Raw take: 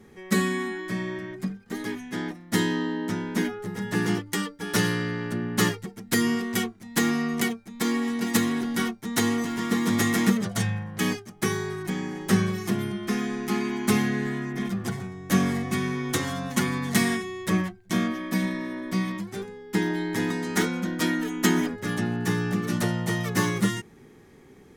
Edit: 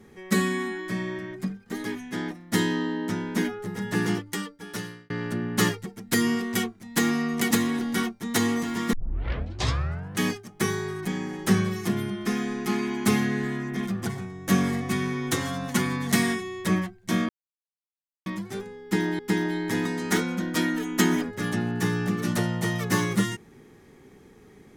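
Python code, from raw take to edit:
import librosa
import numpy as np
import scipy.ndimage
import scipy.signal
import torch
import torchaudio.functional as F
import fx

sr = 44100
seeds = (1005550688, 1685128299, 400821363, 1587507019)

y = fx.edit(x, sr, fx.fade_out_span(start_s=4.02, length_s=1.08),
    fx.cut(start_s=7.51, length_s=0.82),
    fx.tape_start(start_s=9.75, length_s=1.26),
    fx.silence(start_s=18.11, length_s=0.97),
    fx.repeat(start_s=19.64, length_s=0.37, count=2), tone=tone)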